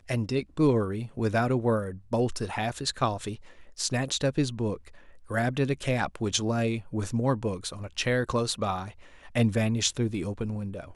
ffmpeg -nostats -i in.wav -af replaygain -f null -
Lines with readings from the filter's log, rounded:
track_gain = +8.9 dB
track_peak = 0.299